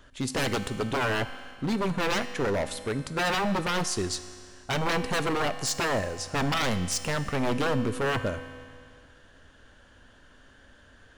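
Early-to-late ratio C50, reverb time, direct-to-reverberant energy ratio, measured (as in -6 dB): 11.5 dB, 2.2 s, 10.0 dB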